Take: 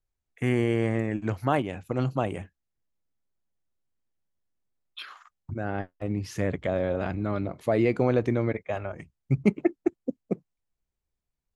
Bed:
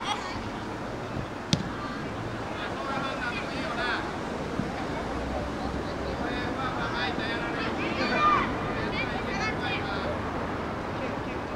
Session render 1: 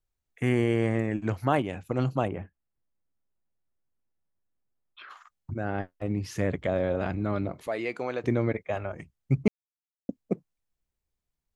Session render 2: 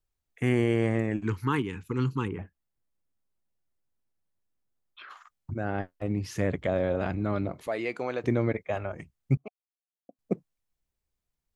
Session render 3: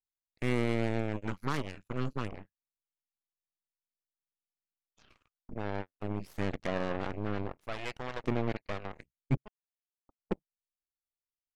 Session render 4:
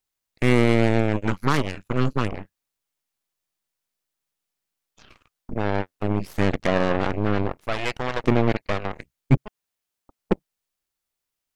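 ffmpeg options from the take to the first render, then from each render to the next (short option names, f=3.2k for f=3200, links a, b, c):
-filter_complex "[0:a]asplit=3[a][b][c];[a]afade=t=out:st=2.27:d=0.02[d];[b]lowpass=1.8k,afade=t=in:st=2.27:d=0.02,afade=t=out:st=5.09:d=0.02[e];[c]afade=t=in:st=5.09:d=0.02[f];[d][e][f]amix=inputs=3:normalize=0,asettb=1/sr,asplit=3[g][h][i];[g]atrim=end=7.674[j];[h]atrim=start=7.67:end=8.24,asetpts=PTS-STARTPTS,afade=t=in:d=0.004:c=qsin,afade=t=out:st=0.566:d=0.004:c=qsin,highpass=f=1.1k:p=1[k];[i]atrim=start=8.236[l];[j][k]acrossfade=d=0.004:c1=hsin:c2=qsin[m];[m][l]acrossfade=d=0.004:c1=qsin:c2=hsin,asplit=3[n][o][p];[n]atrim=end=9.48,asetpts=PTS-STARTPTS,afade=t=out:st=9.476:d=0.004:c=hsin[q];[o]atrim=start=9.48:end=10.09,asetpts=PTS-STARTPTS,volume=0[r];[p]atrim=start=10.09,asetpts=PTS-STARTPTS,afade=t=in:d=0.004:c=hsin[s];[q][r][s]concat=n=3:v=0:a=1"
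-filter_complex "[0:a]asettb=1/sr,asplit=3[a][b][c];[a]atrim=end=1.234[d];[b]atrim=start=1.23:end=2.39,asetpts=PTS-STARTPTS,afade=t=in:d=0.004:c=qsin,afade=t=out:st=1.156:d=0.004:c=qsin,asuperstop=centerf=640:order=8:qfactor=1.5[e];[c]atrim=start=2.386[f];[d][e]acrossfade=d=0.004:c1=hsin:c2=qsin[g];[g][f]acrossfade=d=0.004:c1=qsin:c2=hsin,asettb=1/sr,asplit=3[h][i][j];[h]atrim=end=9.374[k];[i]atrim=start=9.37:end=10.19,asetpts=PTS-STARTPTS,afade=t=in:d=0.004:c=qsin,afade=t=out:st=0.816:d=0.004:c=qsin,asplit=3[l][m][n];[l]bandpass=f=730:t=q:w=8,volume=0dB[o];[m]bandpass=f=1.09k:t=q:w=8,volume=-6dB[p];[n]bandpass=f=2.44k:t=q:w=8,volume=-9dB[q];[o][p][q]amix=inputs=3:normalize=0[r];[j]atrim=start=10.186[s];[k][r]acrossfade=d=0.004:c1=hsin:c2=qsin[t];[t][s]acrossfade=d=0.004:c1=qsin:c2=hsin"
-af "asoftclip=type=tanh:threshold=-18.5dB,aeval=exprs='0.119*(cos(1*acos(clip(val(0)/0.119,-1,1)))-cos(1*PI/2))+0.0376*(cos(3*acos(clip(val(0)/0.119,-1,1)))-cos(3*PI/2))+0.0133*(cos(6*acos(clip(val(0)/0.119,-1,1)))-cos(6*PI/2))':c=same"
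-af "volume=12dB"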